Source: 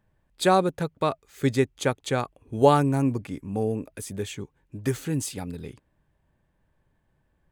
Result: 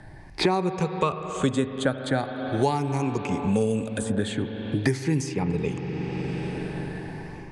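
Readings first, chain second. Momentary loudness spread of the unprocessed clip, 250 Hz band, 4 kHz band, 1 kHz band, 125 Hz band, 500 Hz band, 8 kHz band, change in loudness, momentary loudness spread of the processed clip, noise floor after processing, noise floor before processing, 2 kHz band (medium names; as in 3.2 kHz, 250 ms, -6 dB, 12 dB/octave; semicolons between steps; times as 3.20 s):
15 LU, +2.0 dB, +2.0 dB, -2.5 dB, +1.5 dB, -1.5 dB, -1.5 dB, -1.0 dB, 8 LU, -42 dBFS, -71 dBFS, +2.0 dB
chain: drifting ripple filter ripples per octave 0.78, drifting +0.43 Hz, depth 11 dB; steep low-pass 9.8 kHz 48 dB/octave; level rider gain up to 8 dB; spring tank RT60 3.2 s, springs 38/45 ms, chirp 65 ms, DRR 9.5 dB; three bands compressed up and down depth 100%; trim -7 dB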